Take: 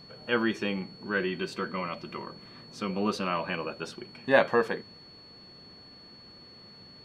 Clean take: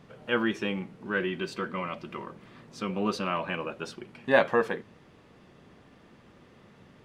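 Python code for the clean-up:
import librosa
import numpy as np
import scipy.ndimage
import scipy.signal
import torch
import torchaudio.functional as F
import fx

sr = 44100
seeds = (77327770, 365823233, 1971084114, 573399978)

y = fx.notch(x, sr, hz=4400.0, q=30.0)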